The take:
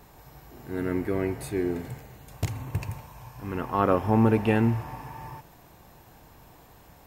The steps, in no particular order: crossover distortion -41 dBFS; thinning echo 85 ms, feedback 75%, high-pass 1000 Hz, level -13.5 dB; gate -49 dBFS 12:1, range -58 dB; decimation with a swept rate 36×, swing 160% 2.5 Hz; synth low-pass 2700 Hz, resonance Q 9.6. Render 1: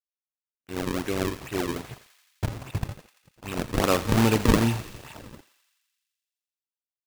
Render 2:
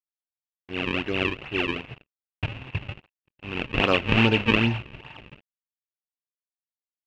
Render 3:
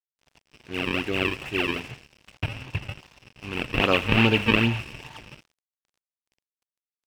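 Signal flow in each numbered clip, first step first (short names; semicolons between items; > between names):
crossover distortion > synth low-pass > decimation with a swept rate > gate > thinning echo; thinning echo > crossover distortion > gate > decimation with a swept rate > synth low-pass; decimation with a swept rate > synth low-pass > gate > thinning echo > crossover distortion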